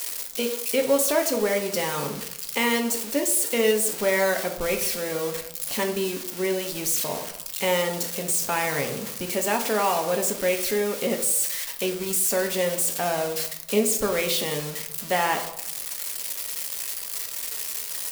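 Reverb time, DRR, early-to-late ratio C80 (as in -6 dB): 0.75 s, 3.0 dB, 11.5 dB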